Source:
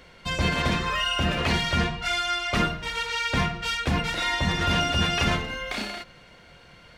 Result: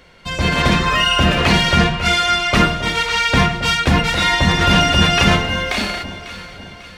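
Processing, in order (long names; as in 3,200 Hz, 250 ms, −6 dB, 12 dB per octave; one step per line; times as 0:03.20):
automatic gain control gain up to 8 dB
delay that swaps between a low-pass and a high-pass 273 ms, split 940 Hz, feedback 67%, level −11 dB
level +2.5 dB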